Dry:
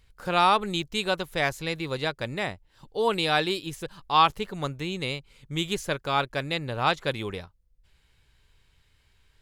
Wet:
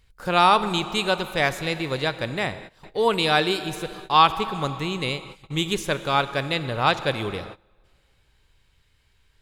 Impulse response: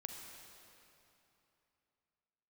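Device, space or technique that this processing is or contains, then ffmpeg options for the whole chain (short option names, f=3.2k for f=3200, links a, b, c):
keyed gated reverb: -filter_complex "[0:a]asplit=3[a][b][c];[1:a]atrim=start_sample=2205[d];[b][d]afir=irnorm=-1:irlink=0[e];[c]apad=whole_len=415238[f];[e][f]sidechaingate=range=-21dB:threshold=-49dB:ratio=16:detection=peak,volume=-1dB[g];[a][g]amix=inputs=2:normalize=0"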